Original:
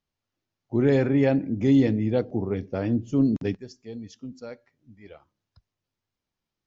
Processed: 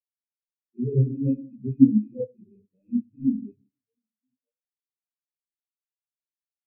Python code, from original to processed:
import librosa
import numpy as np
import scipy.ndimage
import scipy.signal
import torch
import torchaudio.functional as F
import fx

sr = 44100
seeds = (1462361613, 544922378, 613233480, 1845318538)

p1 = fx.rattle_buzz(x, sr, strikes_db=-30.0, level_db=-17.0)
p2 = fx.high_shelf(p1, sr, hz=2700.0, db=-3.5)
p3 = p2 + fx.echo_filtered(p2, sr, ms=88, feedback_pct=77, hz=2000.0, wet_db=-16.0, dry=0)
p4 = fx.room_shoebox(p3, sr, seeds[0], volume_m3=200.0, walls='mixed', distance_m=1.3)
y = fx.spectral_expand(p4, sr, expansion=4.0)